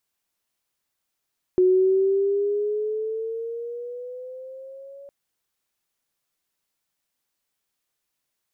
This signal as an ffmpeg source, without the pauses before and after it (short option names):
-f lavfi -i "aevalsrc='pow(10,(-13.5-26.5*t/3.51)/20)*sin(2*PI*365*3.51/(7.5*log(2)/12)*(exp(7.5*log(2)/12*t/3.51)-1))':d=3.51:s=44100"